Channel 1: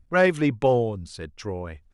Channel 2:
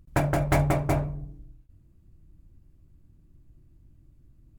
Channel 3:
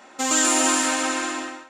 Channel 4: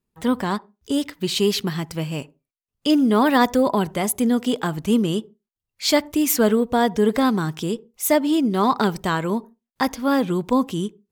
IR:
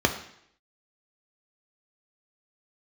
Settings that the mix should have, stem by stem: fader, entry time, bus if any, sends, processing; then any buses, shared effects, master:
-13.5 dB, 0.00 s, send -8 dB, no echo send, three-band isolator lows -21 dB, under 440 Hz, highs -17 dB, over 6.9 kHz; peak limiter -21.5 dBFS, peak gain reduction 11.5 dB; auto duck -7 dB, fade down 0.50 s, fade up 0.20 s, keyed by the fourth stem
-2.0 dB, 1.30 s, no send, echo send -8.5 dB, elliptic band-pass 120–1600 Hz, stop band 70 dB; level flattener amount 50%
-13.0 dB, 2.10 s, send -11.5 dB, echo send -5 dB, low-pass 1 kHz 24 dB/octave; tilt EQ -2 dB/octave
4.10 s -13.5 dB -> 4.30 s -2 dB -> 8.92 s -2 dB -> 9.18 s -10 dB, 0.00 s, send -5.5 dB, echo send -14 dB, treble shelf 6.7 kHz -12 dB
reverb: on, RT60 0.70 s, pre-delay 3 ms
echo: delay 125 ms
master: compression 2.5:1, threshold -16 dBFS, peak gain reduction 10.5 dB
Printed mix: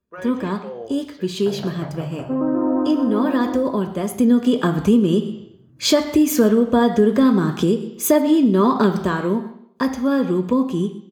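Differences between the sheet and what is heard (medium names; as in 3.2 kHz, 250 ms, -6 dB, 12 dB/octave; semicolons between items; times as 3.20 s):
stem 2 -2.0 dB -> -10.5 dB; stem 3 -13.0 dB -> -6.0 dB; stem 4: missing treble shelf 6.7 kHz -12 dB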